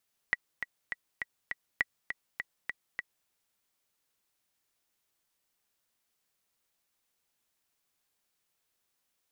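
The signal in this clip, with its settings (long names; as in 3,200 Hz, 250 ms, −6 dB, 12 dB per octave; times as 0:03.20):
click track 203 BPM, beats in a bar 5, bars 2, 1,940 Hz, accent 8 dB −13 dBFS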